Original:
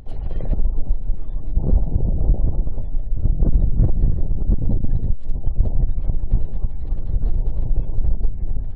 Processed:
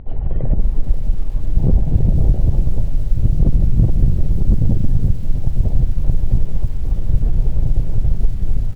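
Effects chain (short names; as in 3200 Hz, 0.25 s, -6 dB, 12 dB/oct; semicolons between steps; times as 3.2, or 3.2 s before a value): dynamic EQ 130 Hz, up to +5 dB, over -34 dBFS, Q 1.3; compressor 16:1, threshold -12 dBFS, peak gain reduction 5.5 dB; air absorption 450 m; feedback echo 98 ms, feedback 45%, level -16.5 dB; lo-fi delay 0.534 s, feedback 55%, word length 7-bit, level -14 dB; gain +5 dB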